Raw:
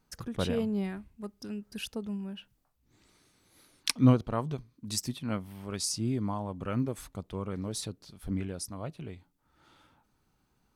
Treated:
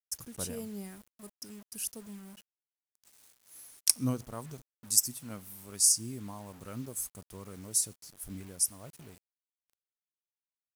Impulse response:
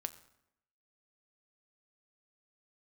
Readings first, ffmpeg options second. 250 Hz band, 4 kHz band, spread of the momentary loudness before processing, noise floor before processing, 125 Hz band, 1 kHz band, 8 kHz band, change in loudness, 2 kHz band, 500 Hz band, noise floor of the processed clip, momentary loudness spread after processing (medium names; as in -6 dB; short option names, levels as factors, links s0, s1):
-10.0 dB, 0.0 dB, 14 LU, -73 dBFS, -10.5 dB, -10.0 dB, +10.5 dB, +2.5 dB, -9.5 dB, -10.0 dB, under -85 dBFS, 21 LU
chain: -filter_complex "[0:a]asplit=2[s0][s1];[1:a]atrim=start_sample=2205[s2];[s1][s2]afir=irnorm=-1:irlink=0,volume=0.376[s3];[s0][s3]amix=inputs=2:normalize=0,aexciter=amount=11:drive=5.9:freq=5400,acrusher=bits=6:mix=0:aa=0.000001,volume=0.237"